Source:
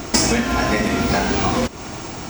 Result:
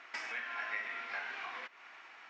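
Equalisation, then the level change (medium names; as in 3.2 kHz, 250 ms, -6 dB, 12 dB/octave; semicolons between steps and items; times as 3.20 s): resonant high-pass 1.9 kHz, resonance Q 1.8; tape spacing loss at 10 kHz 37 dB; treble shelf 4.8 kHz -9.5 dB; -8.5 dB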